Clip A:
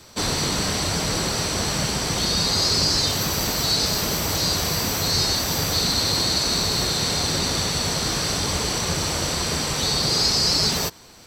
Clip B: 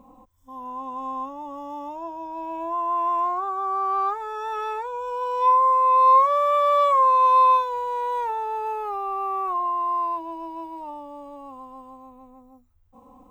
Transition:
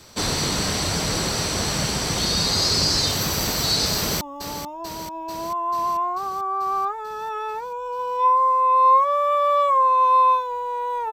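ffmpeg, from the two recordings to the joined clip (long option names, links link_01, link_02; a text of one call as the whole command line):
ffmpeg -i cue0.wav -i cue1.wav -filter_complex "[0:a]apad=whole_dur=11.12,atrim=end=11.12,atrim=end=4.212[link_01];[1:a]atrim=start=1.428:end=8.34[link_02];[link_01][link_02]acrossfade=duration=0.004:curve1=hsin:curve2=hsin,asplit=2[link_03][link_04];[link_04]afade=type=in:start_time=3.96:duration=0.01,afade=type=out:start_time=4.21:duration=0.01,aecho=0:1:440|880|1320|1760|2200|2640|3080|3520|3960|4400:0.334965|0.234476|0.164133|0.114893|0.0804252|0.0562976|0.0394083|0.0275858|0.0193101|0.0135171[link_05];[link_03][link_05]amix=inputs=2:normalize=0" out.wav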